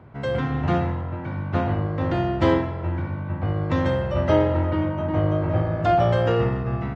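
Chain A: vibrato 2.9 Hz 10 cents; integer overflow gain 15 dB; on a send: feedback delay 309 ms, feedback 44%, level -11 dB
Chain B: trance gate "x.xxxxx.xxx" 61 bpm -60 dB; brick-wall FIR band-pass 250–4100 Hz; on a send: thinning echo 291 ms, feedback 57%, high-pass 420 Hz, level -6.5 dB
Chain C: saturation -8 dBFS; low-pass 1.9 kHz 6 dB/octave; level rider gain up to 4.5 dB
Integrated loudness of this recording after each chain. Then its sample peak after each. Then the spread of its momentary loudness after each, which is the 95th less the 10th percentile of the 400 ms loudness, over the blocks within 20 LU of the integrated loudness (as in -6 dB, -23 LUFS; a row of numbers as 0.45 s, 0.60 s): -22.5 LUFS, -25.5 LUFS, -20.0 LUFS; -12.5 dBFS, -7.0 dBFS, -5.5 dBFS; 7 LU, 13 LU, 8 LU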